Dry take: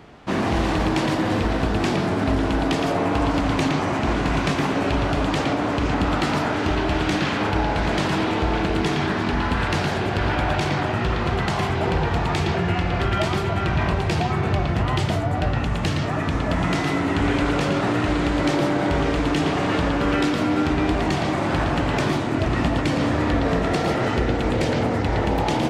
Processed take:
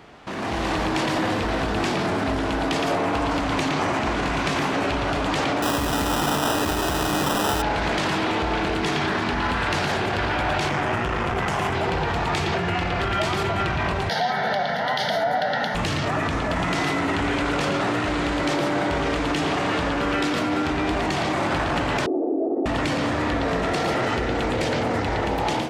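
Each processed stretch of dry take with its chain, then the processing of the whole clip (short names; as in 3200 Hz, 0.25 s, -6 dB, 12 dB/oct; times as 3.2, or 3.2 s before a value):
5.62–7.62 sample-rate reducer 2200 Hz + doubler 14 ms -12 dB
10.69–11.73 bell 4100 Hz -14 dB 0.4 oct + tube stage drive 19 dB, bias 0.55
14.09–15.75 HPF 210 Hz 24 dB/oct + fixed phaser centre 1700 Hz, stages 8
22.06–22.66 elliptic band-pass 260–640 Hz, stop band 80 dB + comb 2.5 ms, depth 53%
whole clip: limiter -23 dBFS; AGC gain up to 8.5 dB; low shelf 360 Hz -7 dB; gain +1.5 dB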